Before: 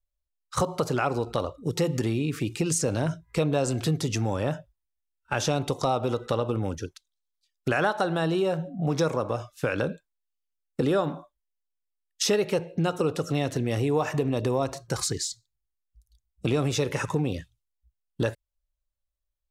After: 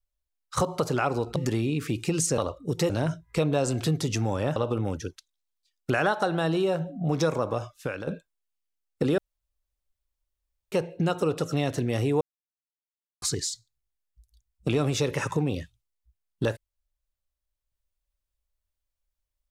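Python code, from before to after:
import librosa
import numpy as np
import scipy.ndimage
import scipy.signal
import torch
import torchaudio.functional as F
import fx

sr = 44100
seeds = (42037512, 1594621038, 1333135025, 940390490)

y = fx.edit(x, sr, fx.move(start_s=1.36, length_s=0.52, to_s=2.9),
    fx.cut(start_s=4.56, length_s=1.78),
    fx.fade_out_to(start_s=9.43, length_s=0.42, floor_db=-12.0),
    fx.room_tone_fill(start_s=10.96, length_s=1.54),
    fx.silence(start_s=13.99, length_s=1.01), tone=tone)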